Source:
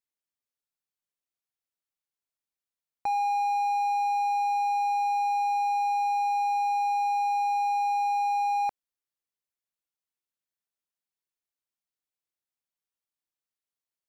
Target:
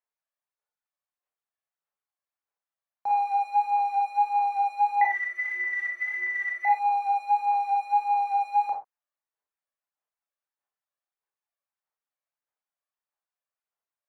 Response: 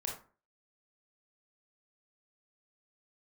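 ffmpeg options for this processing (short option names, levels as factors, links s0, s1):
-filter_complex "[0:a]asettb=1/sr,asplit=3[s0][s1][s2];[s0]atrim=end=5.014[s3];[s1]atrim=start=5.01:end=6.65,asetpts=PTS-STARTPTS,afade=t=in:d=0.004:c=qsin,afade=t=out:st=1.636:d=0.004:c=qsin,lowpass=f=2400:t=q:w=0.5098,lowpass=f=2400:t=q:w=0.6013,lowpass=f=2400:t=q:w=0.9,lowpass=f=2400:t=q:w=2.563,afreqshift=-2800[s4];[s2]atrim=start=6.646[s5];[s3][s4]acrossfade=d=0.004:c1=hsin:c2=qsin[s6];[s6][s5]acrossfade=d=0.004:c1=qsin:c2=hsin,asplit=2[s7][s8];[s8]asoftclip=type=tanh:threshold=0.0266,volume=0.376[s9];[s7][s9]amix=inputs=2:normalize=0,aphaser=in_gain=1:out_gain=1:delay=1.8:decay=0.6:speed=1.6:type=sinusoidal,acrossover=split=530 2000:gain=0.0891 1 0.2[s10][s11][s12];[s10][s11][s12]amix=inputs=3:normalize=0[s13];[1:a]atrim=start_sample=2205,atrim=end_sample=6615[s14];[s13][s14]afir=irnorm=-1:irlink=0"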